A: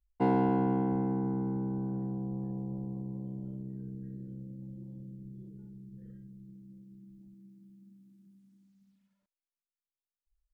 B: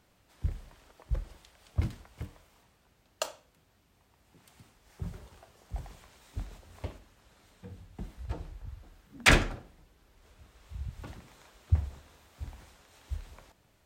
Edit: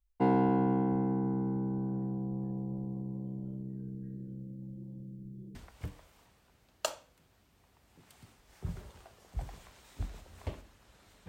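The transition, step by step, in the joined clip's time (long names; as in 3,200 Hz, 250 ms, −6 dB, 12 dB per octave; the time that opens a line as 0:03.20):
A
0:05.55: continue with B from 0:01.92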